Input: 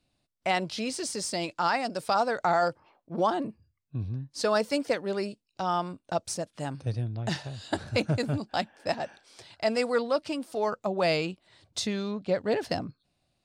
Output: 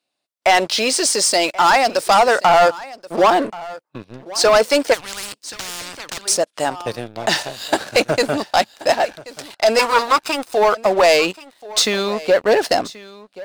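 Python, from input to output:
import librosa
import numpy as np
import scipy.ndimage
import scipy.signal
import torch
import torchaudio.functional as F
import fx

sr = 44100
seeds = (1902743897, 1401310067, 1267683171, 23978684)

y = fx.lower_of_two(x, sr, delay_ms=0.8, at=(9.79, 10.53))
y = scipy.signal.sosfilt(scipy.signal.butter(2, 440.0, 'highpass', fs=sr, output='sos'), y)
y = fx.leveller(y, sr, passes=3)
y = y + 10.0 ** (-19.0 / 20.0) * np.pad(y, (int(1081 * sr / 1000.0), 0))[:len(y)]
y = fx.spectral_comp(y, sr, ratio=10.0, at=(4.93, 6.25), fade=0.02)
y = y * 10.0 ** (6.5 / 20.0)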